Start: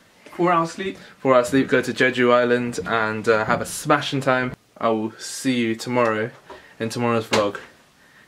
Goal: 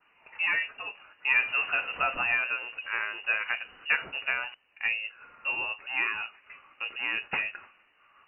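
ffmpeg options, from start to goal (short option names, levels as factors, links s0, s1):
-filter_complex "[0:a]asettb=1/sr,asplit=3[s0][s1][s2];[s0]atrim=end=1.364[s3];[s1]atrim=start=1.36:end=2.44,asetpts=PTS-STARTPTS,afade=t=in:d=0.004:c=qsin,afade=t=out:st=1.076:d=0.004:c=qsin,aeval=exprs='val(0)+0.5*0.0631*sgn(val(0))':c=same[s4];[s2]atrim=start=2.436[s5];[s3][s4]acrossfade=d=0.004:c1=hsin:c2=qsin[s6];[s6][s5]acrossfade=d=0.004:c1=qsin:c2=hsin,equalizer=f=120:t=o:w=1.6:g=-4,lowpass=f=2600:t=q:w=0.5098,lowpass=f=2600:t=q:w=0.6013,lowpass=f=2600:t=q:w=0.9,lowpass=f=2600:t=q:w=2.563,afreqshift=-3000,adynamicequalizer=threshold=0.0316:dfrequency=1800:dqfactor=0.7:tfrequency=1800:tqfactor=0.7:attack=5:release=100:ratio=0.375:range=3:mode=cutabove:tftype=highshelf,volume=0.376"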